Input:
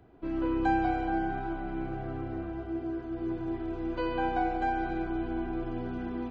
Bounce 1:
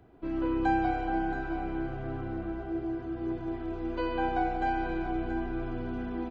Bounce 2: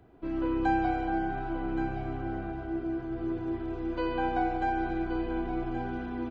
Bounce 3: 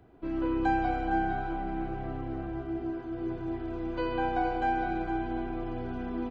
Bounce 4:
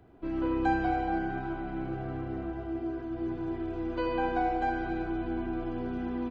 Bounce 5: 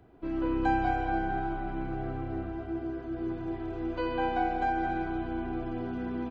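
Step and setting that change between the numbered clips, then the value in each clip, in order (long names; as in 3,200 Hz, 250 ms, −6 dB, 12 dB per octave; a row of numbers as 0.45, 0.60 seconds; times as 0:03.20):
single-tap delay, delay time: 677, 1,124, 461, 77, 214 milliseconds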